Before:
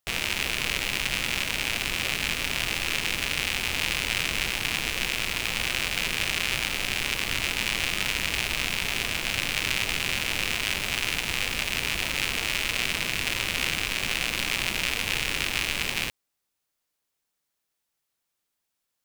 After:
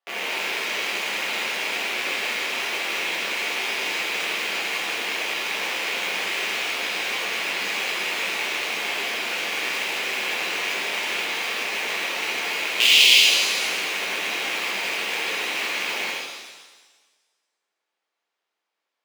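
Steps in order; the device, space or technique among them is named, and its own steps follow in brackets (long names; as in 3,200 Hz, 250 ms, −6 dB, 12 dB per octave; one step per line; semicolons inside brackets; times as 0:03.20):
carbon microphone (band-pass filter 310–2,900 Hz; soft clipping −20 dBFS, distortion −13 dB; noise that follows the level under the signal 16 dB)
0:12.80–0:13.20: high shelf with overshoot 2,200 Hz +13.5 dB, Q 3
high-pass filter 230 Hz 12 dB per octave
reverb with rising layers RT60 1.3 s, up +7 semitones, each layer −8 dB, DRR −6.5 dB
level −1 dB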